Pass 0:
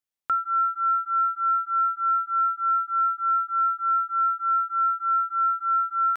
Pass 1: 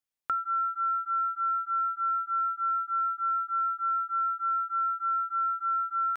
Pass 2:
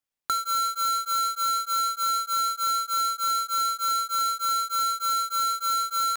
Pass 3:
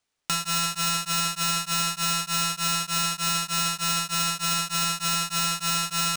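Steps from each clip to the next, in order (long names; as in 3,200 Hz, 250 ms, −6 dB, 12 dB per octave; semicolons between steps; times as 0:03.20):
downward compressor 5 to 1, threshold −25 dBFS, peak gain reduction 5 dB; level −1.5 dB
each half-wave held at its own peak
RIAA equalisation recording; bad sample-rate conversion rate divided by 3×, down none, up hold; level −7 dB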